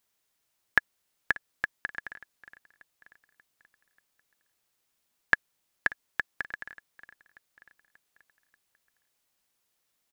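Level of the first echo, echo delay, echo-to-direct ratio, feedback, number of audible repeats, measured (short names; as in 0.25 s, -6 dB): -21.0 dB, 0.586 s, -19.5 dB, 51%, 3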